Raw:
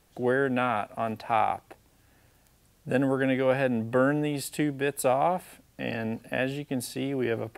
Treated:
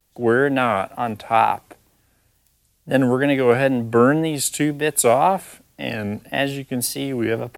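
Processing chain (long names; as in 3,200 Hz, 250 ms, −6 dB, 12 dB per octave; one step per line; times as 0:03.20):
high-shelf EQ 5,500 Hz +5.5 dB
floating-point word with a short mantissa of 6 bits
tape wow and flutter 140 cents
multiband upward and downward expander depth 40%
level +7.5 dB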